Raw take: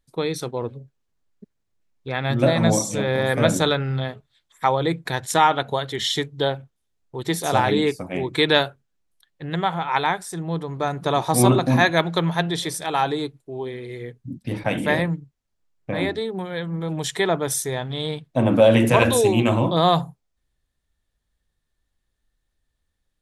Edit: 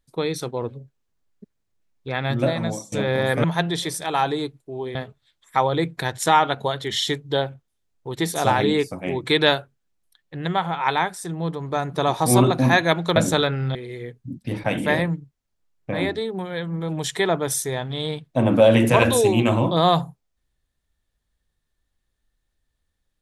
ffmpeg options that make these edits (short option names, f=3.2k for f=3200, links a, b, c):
-filter_complex "[0:a]asplit=6[a][b][c][d][e][f];[a]atrim=end=2.92,asetpts=PTS-STARTPTS,afade=t=out:st=2.22:d=0.7:silence=0.0707946[g];[b]atrim=start=2.92:end=3.442,asetpts=PTS-STARTPTS,afade=t=in:d=0.004:c=hsin:silence=0.0707946[h];[c]atrim=start=12.238:end=13.752[i];[d]atrim=start=4.028:end=12.242[j];[e]atrim=start=3.438:end=4.032[k];[f]atrim=start=13.748[l];[g][h]concat=n=2:v=0:a=1[m];[m][i]acrossfade=d=0.004:c1=hsin:c2=hsin[n];[n][j]acrossfade=d=0.004:c1=hsin:c2=hsin[o];[o][k]acrossfade=d=0.004:c1=hsin:c2=hsin[p];[p][l]acrossfade=d=0.004:c1=hsin:c2=hsin"